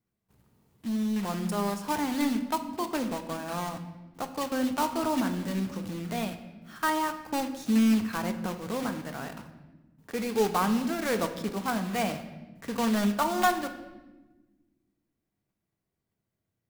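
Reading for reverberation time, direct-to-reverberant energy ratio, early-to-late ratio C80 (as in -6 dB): 1.2 s, 7.0 dB, 12.5 dB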